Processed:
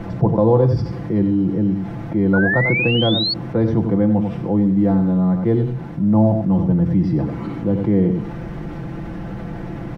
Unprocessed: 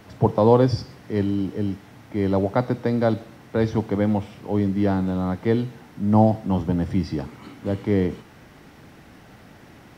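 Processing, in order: 4.58–6.71 G.711 law mismatch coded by A; high shelf 2600 Hz -9 dB; comb 5.9 ms, depth 65%; echo 93 ms -10.5 dB; 2.33–3.34 painted sound rise 1400–4500 Hz -18 dBFS; tilt -2.5 dB/oct; fast leveller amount 50%; gain -5 dB

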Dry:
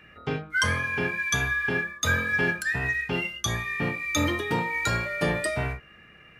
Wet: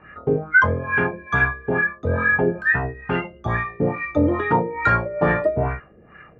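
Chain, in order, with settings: LFO low-pass sine 2.3 Hz 450–1600 Hz; gain +5.5 dB

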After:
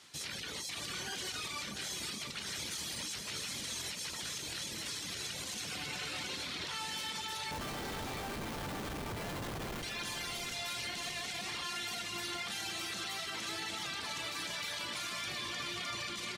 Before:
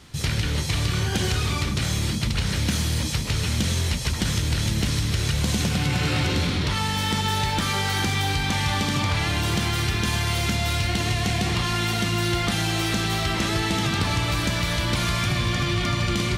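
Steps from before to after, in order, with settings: octaver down 1 oct, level 0 dB; weighting filter A; reverb removal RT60 0.87 s; high shelf 4500 Hz +8 dB; limiter -22 dBFS, peak gain reduction 13.5 dB; 7.51–9.83 Schmitt trigger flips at -27.5 dBFS; feedback echo 0.691 s, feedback 38%, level -9 dB; gain -9 dB

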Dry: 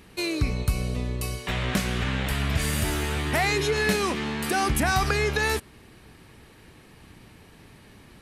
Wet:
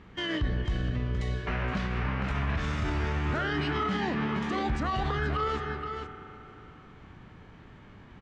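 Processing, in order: echo 0.471 s -11.5 dB; spring tank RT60 3.4 s, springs 37 ms, chirp 70 ms, DRR 10 dB; formant shift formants -5 st; limiter -19.5 dBFS, peak gain reduction 8.5 dB; air absorption 230 m

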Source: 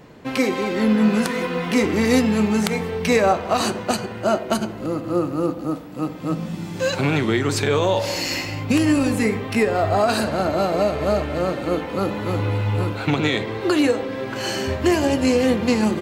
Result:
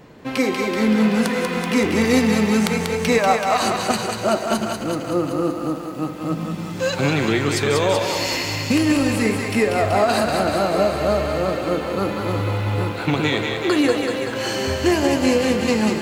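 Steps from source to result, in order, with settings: 3.18–3.62 resonant low shelf 560 Hz -7.5 dB, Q 1.5; thinning echo 0.19 s, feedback 47%, high-pass 520 Hz, level -4 dB; lo-fi delay 0.38 s, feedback 55%, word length 7-bit, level -14 dB

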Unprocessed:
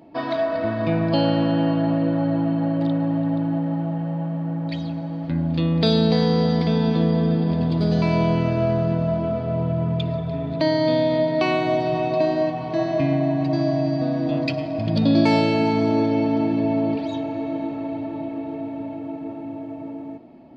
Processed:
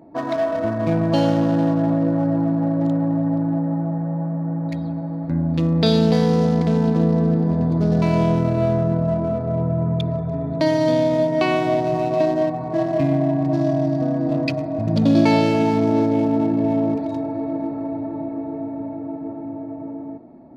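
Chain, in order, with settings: Wiener smoothing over 15 samples; gain +2 dB

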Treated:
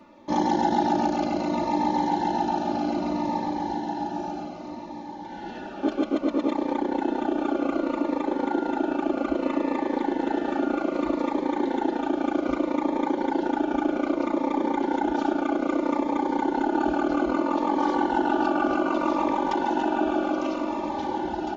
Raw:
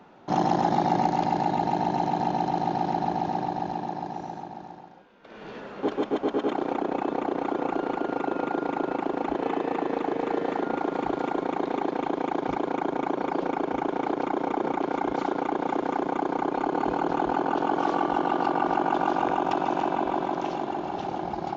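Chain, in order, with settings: comb 3.4 ms, depth 92%; diffused feedback echo 1.268 s, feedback 44%, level -9 dB; cascading phaser falling 0.63 Hz

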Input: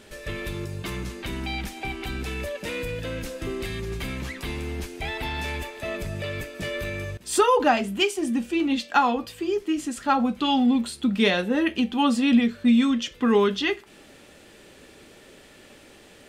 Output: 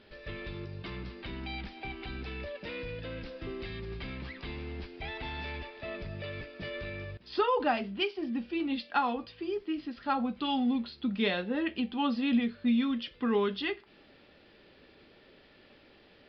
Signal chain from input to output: downsampling 11025 Hz; gain -8.5 dB

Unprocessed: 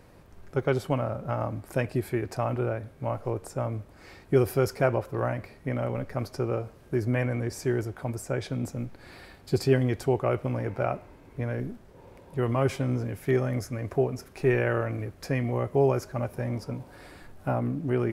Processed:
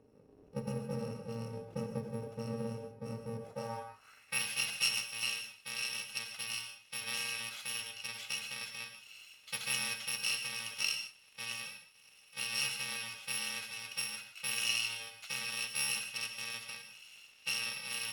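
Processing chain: FFT order left unsorted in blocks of 128 samples; non-linear reverb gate 0.18 s flat, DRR 5 dB; band-pass sweep 380 Hz -> 2900 Hz, 3.37–4.44; gain +5.5 dB

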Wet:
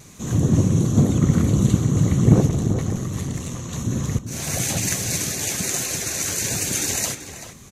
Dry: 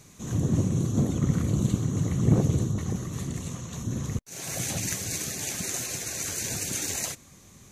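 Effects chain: vibrato 1.1 Hz 16 cents; 2.46–3.69 tube stage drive 24 dB, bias 0.45; outdoor echo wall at 66 m, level -9 dB; gain +7 dB

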